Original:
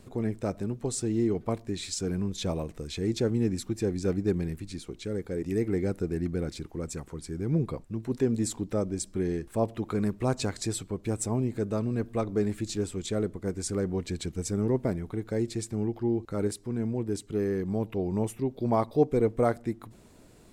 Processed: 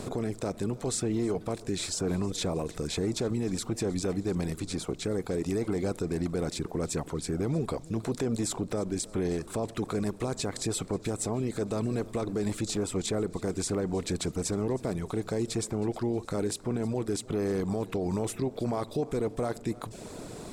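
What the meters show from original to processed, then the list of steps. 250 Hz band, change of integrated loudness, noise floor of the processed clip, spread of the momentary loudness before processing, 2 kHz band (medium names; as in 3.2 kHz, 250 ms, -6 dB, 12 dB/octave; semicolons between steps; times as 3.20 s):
-1.5 dB, -1.0 dB, -46 dBFS, 7 LU, +1.0 dB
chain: spectral levelling over time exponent 0.6; reverb removal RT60 0.8 s; peak limiter -21.5 dBFS, peak gain reduction 11 dB; modulated delay 315 ms, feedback 54%, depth 51 cents, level -21 dB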